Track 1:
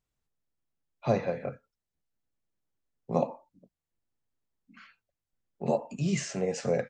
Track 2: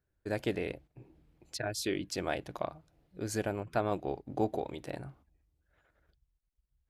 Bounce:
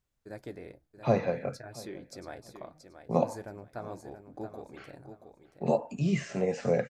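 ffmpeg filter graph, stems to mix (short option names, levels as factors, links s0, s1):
-filter_complex "[0:a]acrossover=split=3000[s0][s1];[s1]acompressor=threshold=0.00316:ratio=4:attack=1:release=60[s2];[s0][s2]amix=inputs=2:normalize=0,volume=1.12,asplit=2[s3][s4];[s4]volume=0.0841[s5];[1:a]equalizer=f=2900:t=o:w=0.41:g=-14.5,flanger=delay=3.1:depth=8.8:regen=-62:speed=0.45:shape=triangular,volume=0.562,asplit=2[s6][s7];[s7]volume=0.355[s8];[s5][s8]amix=inputs=2:normalize=0,aecho=0:1:679|1358|2037|2716:1|0.24|0.0576|0.0138[s9];[s3][s6][s9]amix=inputs=3:normalize=0"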